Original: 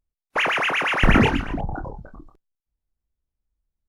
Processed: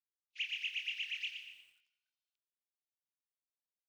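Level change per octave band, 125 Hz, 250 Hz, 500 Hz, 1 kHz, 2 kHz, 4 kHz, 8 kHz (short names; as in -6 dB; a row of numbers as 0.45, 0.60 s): under -40 dB, under -40 dB, under -40 dB, under -40 dB, -19.0 dB, -10.5 dB, -18.0 dB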